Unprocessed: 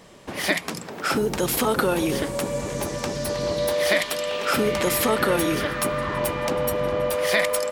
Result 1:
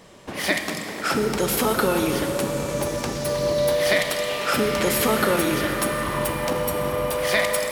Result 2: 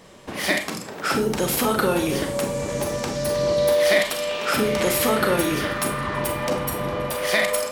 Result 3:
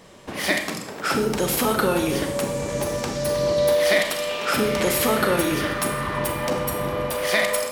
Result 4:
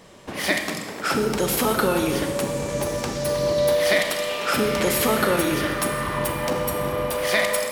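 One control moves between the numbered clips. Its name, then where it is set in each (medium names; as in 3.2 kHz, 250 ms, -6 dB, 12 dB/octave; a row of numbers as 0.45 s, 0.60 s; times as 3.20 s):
Schroeder reverb, RT60: 3.8 s, 0.31 s, 0.7 s, 1.5 s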